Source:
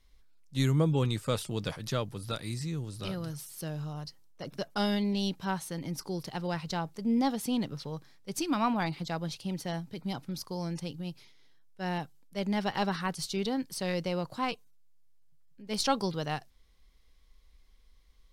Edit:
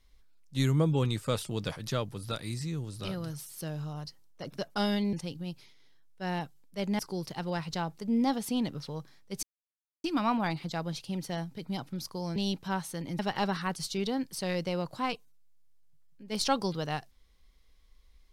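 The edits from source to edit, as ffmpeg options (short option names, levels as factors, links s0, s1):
-filter_complex "[0:a]asplit=6[s0][s1][s2][s3][s4][s5];[s0]atrim=end=5.132[s6];[s1]atrim=start=10.718:end=12.582[s7];[s2]atrim=start=5.958:end=8.4,asetpts=PTS-STARTPTS,afade=t=out:st=2.438:d=0.004:c=hsin,apad=pad_dur=0.61[s8];[s3]atrim=start=8.4:end=10.722,asetpts=PTS-STARTPTS,afade=t=in:d=0.004:c=hsin[s9];[s4]atrim=start=5.128:end=5.962[s10];[s5]atrim=start=12.578[s11];[s6][s7]acrossfade=d=0.004:c1=hsin:c2=hsin[s12];[s8][s9]concat=n=2:v=0:a=1[s13];[s12][s13]acrossfade=d=0.004:c1=hsin:c2=hsin[s14];[s14][s10]acrossfade=d=0.004:c1=hsin:c2=hsin[s15];[s15][s11]acrossfade=d=0.004:c1=hsin:c2=hsin"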